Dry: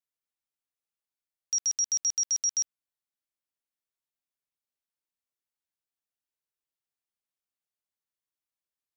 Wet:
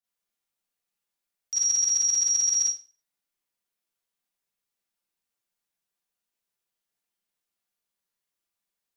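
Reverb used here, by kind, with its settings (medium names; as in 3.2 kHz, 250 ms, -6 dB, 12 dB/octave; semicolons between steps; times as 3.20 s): Schroeder reverb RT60 0.35 s, combs from 32 ms, DRR -9 dB; trim -3 dB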